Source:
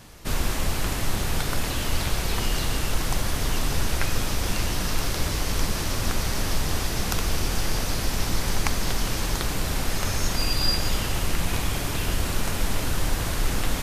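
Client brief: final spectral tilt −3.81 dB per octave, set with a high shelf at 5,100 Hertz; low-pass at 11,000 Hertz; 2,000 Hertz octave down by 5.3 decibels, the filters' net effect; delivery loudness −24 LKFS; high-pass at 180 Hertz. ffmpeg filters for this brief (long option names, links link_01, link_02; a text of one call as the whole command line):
ffmpeg -i in.wav -af "highpass=180,lowpass=11000,equalizer=frequency=2000:width_type=o:gain=-6.5,highshelf=frequency=5100:gain=-3,volume=7dB" out.wav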